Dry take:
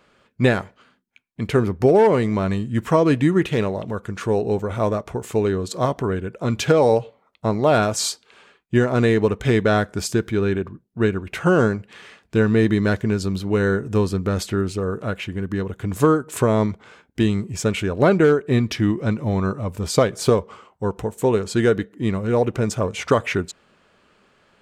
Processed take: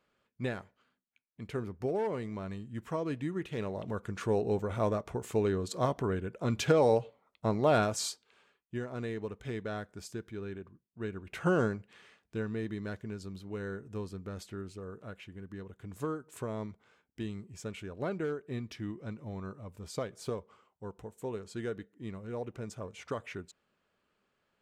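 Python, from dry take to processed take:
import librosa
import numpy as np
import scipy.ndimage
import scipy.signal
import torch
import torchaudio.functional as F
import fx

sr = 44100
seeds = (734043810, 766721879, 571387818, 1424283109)

y = fx.gain(x, sr, db=fx.line((3.46, -18.0), (3.88, -9.0), (7.79, -9.0), (8.78, -20.0), (10.99, -20.0), (11.46, -10.5), (12.61, -19.5)))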